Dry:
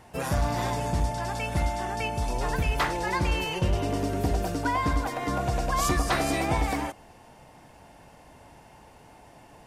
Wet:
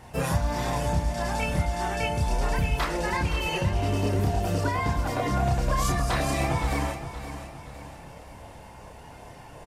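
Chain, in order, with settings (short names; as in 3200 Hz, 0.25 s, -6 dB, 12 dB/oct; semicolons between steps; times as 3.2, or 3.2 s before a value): compressor, threshold -28 dBFS, peak gain reduction 8.5 dB; chorus voices 6, 0.45 Hz, delay 30 ms, depth 1.2 ms; on a send: feedback echo 0.519 s, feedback 44%, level -11.5 dB; on the sum: gain +7.5 dB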